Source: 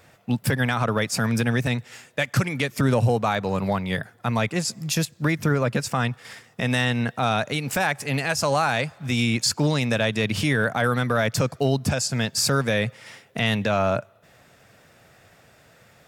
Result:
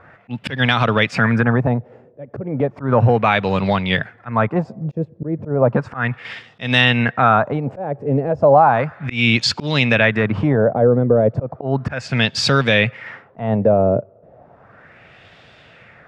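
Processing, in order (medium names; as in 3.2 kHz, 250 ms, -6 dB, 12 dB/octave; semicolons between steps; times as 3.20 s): slow attack 176 ms; LFO low-pass sine 0.34 Hz 460–3500 Hz; trim +6 dB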